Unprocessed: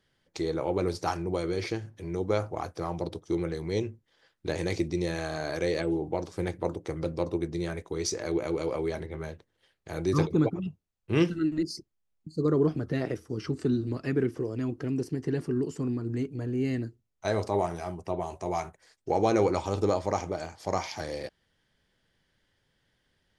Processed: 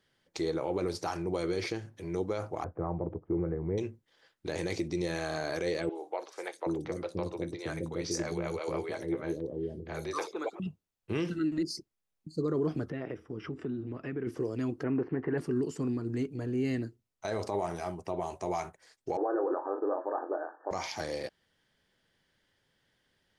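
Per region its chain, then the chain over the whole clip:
0:02.64–0:03.78: Gaussian smoothing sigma 6.1 samples + low-shelf EQ 110 Hz +11 dB
0:05.89–0:10.60: high-pass filter 52 Hz + three-band delay without the direct sound mids, highs, lows 60/770 ms, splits 450/4,400 Hz
0:12.90–0:14.27: downward compressor 2.5 to 1, threshold −34 dBFS + Savitzky-Golay smoothing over 25 samples
0:14.83–0:15.38: one scale factor per block 7 bits + low-pass filter 2,200 Hz 24 dB per octave + parametric band 1,100 Hz +10.5 dB 2.6 octaves
0:19.17–0:20.71: one scale factor per block 7 bits + linear-phase brick-wall band-pass 270–1,800 Hz + double-tracking delay 23 ms −9.5 dB
whole clip: low-shelf EQ 110 Hz −8.5 dB; brickwall limiter −22.5 dBFS

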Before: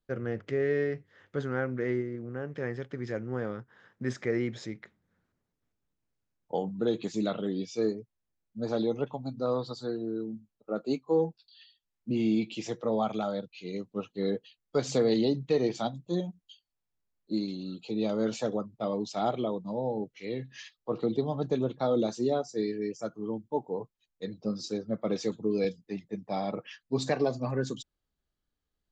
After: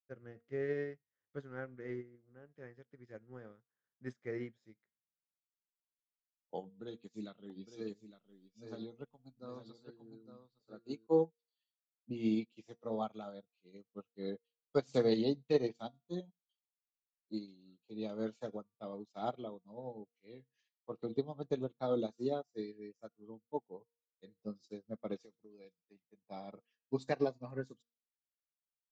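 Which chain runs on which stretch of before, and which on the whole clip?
0:06.64–0:11.07: dynamic equaliser 630 Hz, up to −6 dB, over −43 dBFS, Q 0.94 + upward compression, threshold −36 dBFS + single-tap delay 859 ms −5 dB
0:25.25–0:26.23: low-shelf EQ 250 Hz −7 dB + downward compressor 5 to 1, threshold −32 dBFS
whole clip: hum removal 234 Hz, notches 27; expander for the loud parts 2.5 to 1, over −45 dBFS; level −2 dB

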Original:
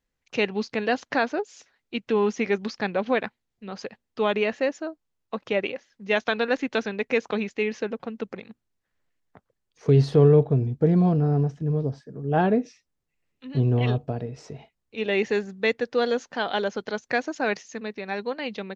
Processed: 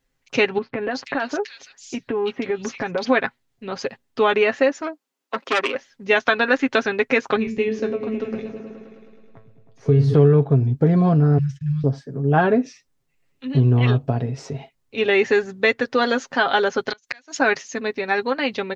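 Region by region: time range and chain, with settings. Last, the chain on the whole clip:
0:00.58–0:03.05: downward compressor, threshold −28 dBFS + multiband delay without the direct sound lows, highs 330 ms, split 2,500 Hz
0:04.81–0:05.75: Butterworth high-pass 210 Hz + saturating transformer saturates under 2,300 Hz
0:07.36–0:10.14: low-shelf EQ 370 Hz +8 dB + tuned comb filter 110 Hz, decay 0.3 s, mix 80% + echo whose low-pass opens from repeat to repeat 106 ms, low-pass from 200 Hz, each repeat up 1 octave, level −3 dB
0:11.38–0:11.84: noise gate −46 dBFS, range −19 dB + inverse Chebyshev band-stop filter 320–650 Hz, stop band 70 dB
0:16.90–0:17.37: tilt shelving filter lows −8.5 dB, about 1,300 Hz + gate with flip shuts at −20 dBFS, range −31 dB + multiband upward and downward compressor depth 40%
whole clip: comb filter 7.4 ms, depth 55%; dynamic equaliser 1,400 Hz, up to +6 dB, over −39 dBFS, Q 1.4; downward compressor 2 to 1, threshold −23 dBFS; level +7 dB

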